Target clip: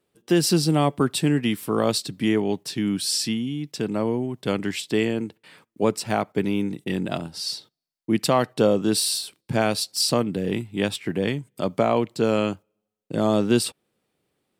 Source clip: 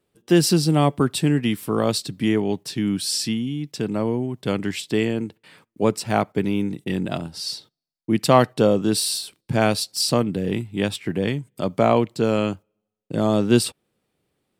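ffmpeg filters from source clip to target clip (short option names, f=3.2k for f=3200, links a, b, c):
-af "alimiter=limit=-7dB:level=0:latency=1:release=222,lowshelf=f=110:g=-7.5"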